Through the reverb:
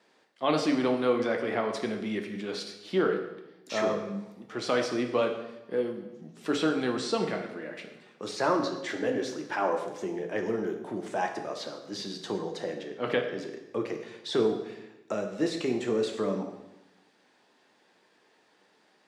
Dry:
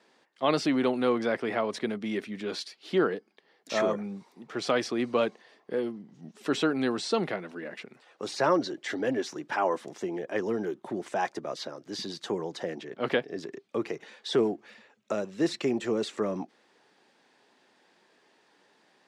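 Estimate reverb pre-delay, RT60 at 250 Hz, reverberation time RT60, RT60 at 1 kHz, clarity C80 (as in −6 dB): 7 ms, 1.2 s, 0.95 s, 0.90 s, 9.5 dB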